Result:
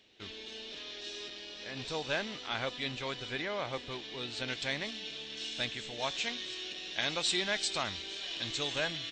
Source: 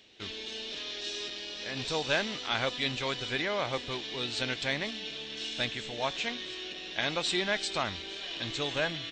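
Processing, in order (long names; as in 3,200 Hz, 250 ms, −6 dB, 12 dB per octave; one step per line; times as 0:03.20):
high-shelf EQ 3,900 Hz −3 dB, from 0:04.48 +4.5 dB, from 0:05.99 +9.5 dB
level −4.5 dB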